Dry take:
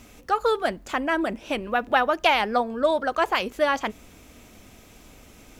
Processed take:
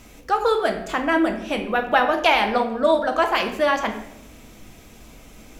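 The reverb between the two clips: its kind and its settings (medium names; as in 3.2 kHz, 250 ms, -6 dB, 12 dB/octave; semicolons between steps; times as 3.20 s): simulated room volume 240 m³, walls mixed, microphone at 0.67 m; trim +1.5 dB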